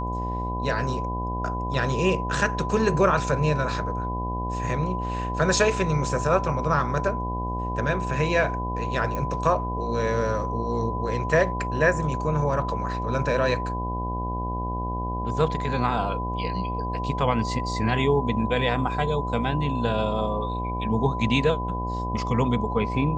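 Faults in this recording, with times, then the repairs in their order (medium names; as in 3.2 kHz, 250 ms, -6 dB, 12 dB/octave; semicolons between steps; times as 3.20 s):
buzz 60 Hz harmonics 18 -30 dBFS
whine 1 kHz -30 dBFS
9.15 s: pop -17 dBFS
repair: de-click; de-hum 60 Hz, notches 18; band-stop 1 kHz, Q 30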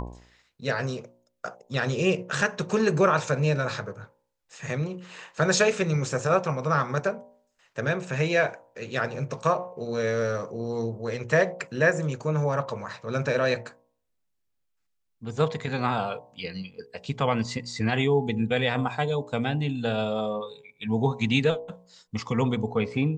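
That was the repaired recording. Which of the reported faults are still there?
nothing left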